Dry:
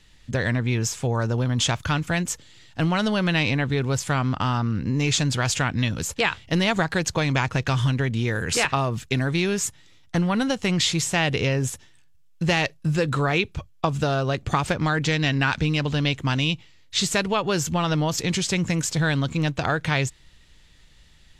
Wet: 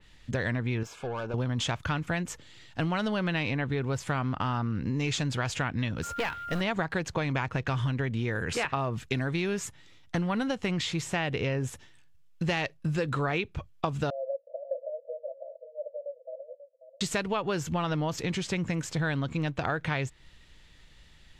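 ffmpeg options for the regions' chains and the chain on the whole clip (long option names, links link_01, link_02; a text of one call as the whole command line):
ffmpeg -i in.wav -filter_complex "[0:a]asettb=1/sr,asplit=3[link_01][link_02][link_03];[link_01]atrim=end=0.834[link_04];[link_02]atrim=start=0.83:end=1.34,asetpts=PTS-STARTPTS,afade=type=in:duration=0.004:curve=qsin,afade=type=out:start_time=0.506:duration=0.004:curve=qsin,bass=frequency=250:gain=-11,treble=frequency=4000:gain=-11,aeval=exprs='(tanh(25.1*val(0)+0.35)-tanh(0.35))/25.1':channel_layout=same,asuperstop=centerf=1900:order=12:qfactor=5.6[link_05];[link_03]atrim=start=1.336[link_06];[link_04][link_05]acrossfade=duration=0.004:curve1=hsin:curve2=qsin[link_07];[link_07][link_06]acrossfade=duration=0.004:curve1=qsin:curve2=hsin,asettb=1/sr,asplit=3[link_08][link_09][link_10];[link_08]atrim=end=6.034[link_11];[link_09]atrim=start=6.03:end=6.61,asetpts=PTS-STARTPTS,afade=type=in:duration=0.004:curve=qsin,afade=type=out:start_time=0.576:duration=0.004:curve=qsin,aeval=exprs='val(0)+0.02*sin(2*PI*1400*n/s)':channel_layout=same,acrusher=bits=4:mode=log:mix=0:aa=0.000001,aeval=exprs='clip(val(0),-1,0.0531)':channel_layout=same[link_12];[link_10]atrim=start=6.606[link_13];[link_11][link_12]acrossfade=duration=0.004:curve1=hsin:curve2=qsin[link_14];[link_14][link_13]acrossfade=duration=0.004:curve1=qsin:curve2=hsin,asettb=1/sr,asplit=3[link_15][link_16][link_17];[link_15]atrim=end=14.104[link_18];[link_16]atrim=start=14.1:end=17.01,asetpts=PTS-STARTPTS,afade=type=in:duration=0.004:curve=qsin,afade=type=out:start_time=2.906:duration=0.004:curve=qsin,asuperpass=centerf=570:order=12:qfactor=3.5,aecho=1:1:539:0.237,atrim=end_sample=128331[link_19];[link_17]atrim=start=17.006[link_20];[link_18][link_19]acrossfade=duration=0.004:curve1=hsin:curve2=qsin[link_21];[link_21][link_20]acrossfade=duration=0.004:curve1=qsin:curve2=hsin,bass=frequency=250:gain=-2,treble=frequency=4000:gain=-5,acompressor=threshold=-30dB:ratio=2,adynamicequalizer=threshold=0.00562:dfrequency=3000:dqfactor=0.7:tfrequency=3000:tqfactor=0.7:attack=5:release=100:ratio=0.375:range=3:mode=cutabove:tftype=highshelf" out.wav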